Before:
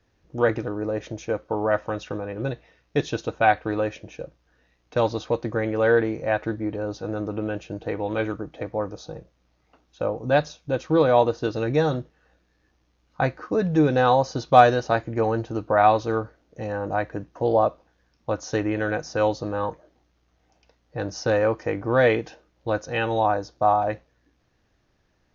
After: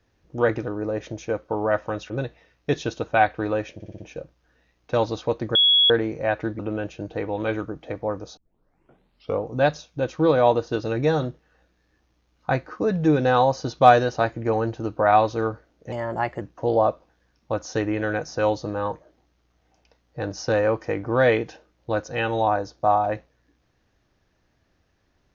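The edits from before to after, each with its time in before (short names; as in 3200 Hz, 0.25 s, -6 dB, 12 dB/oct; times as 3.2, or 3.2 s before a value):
2.1–2.37 cut
4.01 stutter 0.06 s, 5 plays
5.58–5.93 bleep 3350 Hz -13.5 dBFS
6.62–7.3 cut
9.08 tape start 1.05 s
16.63–17.19 speed 114%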